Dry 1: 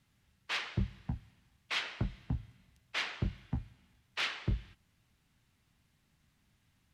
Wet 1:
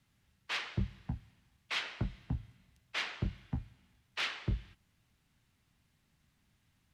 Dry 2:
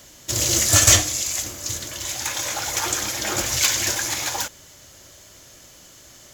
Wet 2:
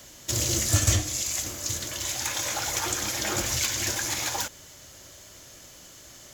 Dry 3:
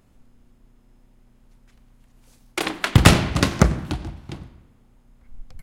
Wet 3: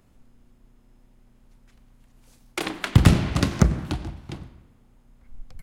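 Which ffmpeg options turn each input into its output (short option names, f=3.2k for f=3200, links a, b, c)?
-filter_complex "[0:a]acrossover=split=340[a][b];[b]acompressor=threshold=-25dB:ratio=3[c];[a][c]amix=inputs=2:normalize=0,volume=-1dB"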